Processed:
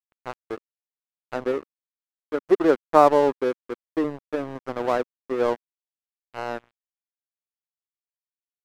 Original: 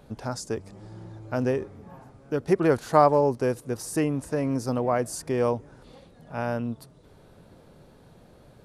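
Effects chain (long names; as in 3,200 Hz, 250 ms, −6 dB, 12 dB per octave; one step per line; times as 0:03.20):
flat-topped bell 710 Hz +15.5 dB 3 octaves
dead-zone distortion −16 dBFS
dynamic equaliser 260 Hz, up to +4 dB, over −22 dBFS, Q 1.1
level −12 dB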